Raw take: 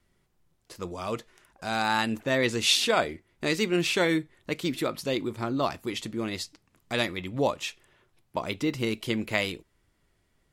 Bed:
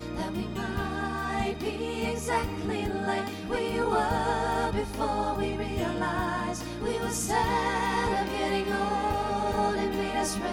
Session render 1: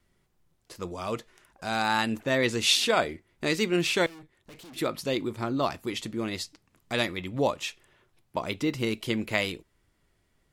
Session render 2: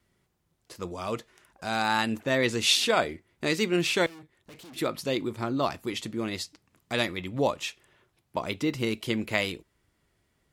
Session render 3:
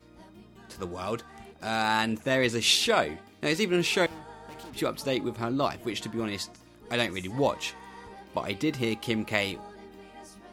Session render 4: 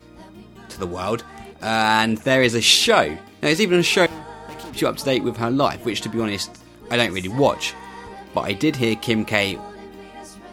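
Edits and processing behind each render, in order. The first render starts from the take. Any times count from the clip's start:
4.06–4.76 tube stage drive 46 dB, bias 0.75
HPF 45 Hz
add bed -19 dB
gain +8.5 dB; limiter -1 dBFS, peak gain reduction 1.5 dB

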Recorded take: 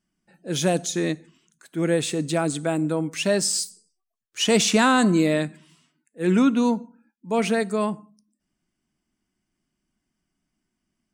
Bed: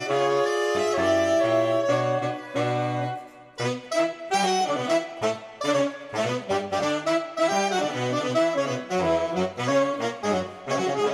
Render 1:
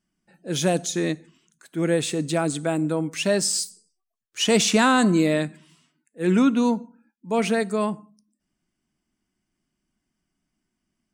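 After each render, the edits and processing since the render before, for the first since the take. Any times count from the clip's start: nothing audible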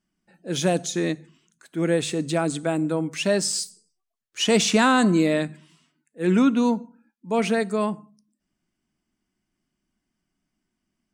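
high shelf 10000 Hz -6.5 dB; notches 50/100/150 Hz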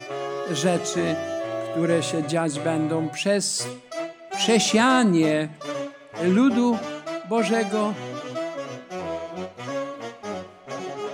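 add bed -7.5 dB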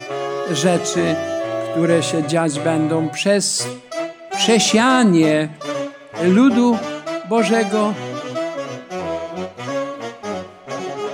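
gain +6 dB; limiter -3 dBFS, peak gain reduction 3 dB

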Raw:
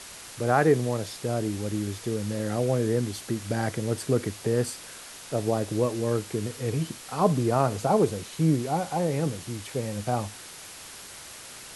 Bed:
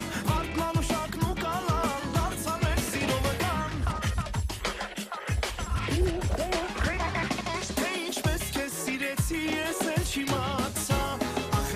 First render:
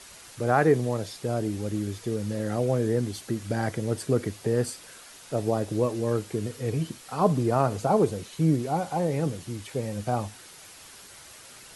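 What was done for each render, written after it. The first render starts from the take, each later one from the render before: denoiser 6 dB, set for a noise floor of -44 dBFS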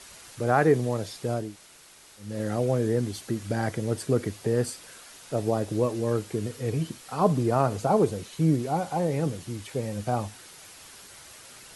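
1.45–2.29 room tone, crossfade 0.24 s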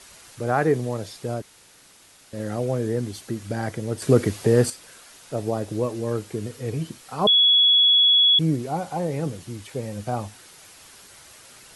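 1.42–2.33 room tone; 4.02–4.7 gain +7.5 dB; 7.27–8.39 bleep 3370 Hz -13 dBFS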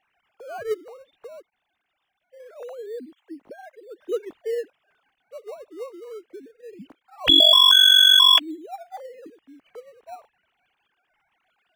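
sine-wave speech; in parallel at -11 dB: decimation with a swept rate 18×, swing 100% 0.22 Hz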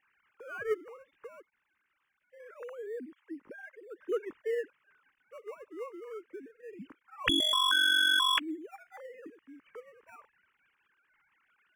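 overdrive pedal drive 9 dB, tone 1800 Hz, clips at -5 dBFS; fixed phaser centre 1700 Hz, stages 4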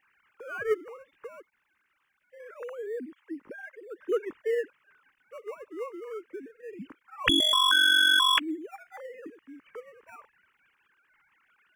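gain +4.5 dB

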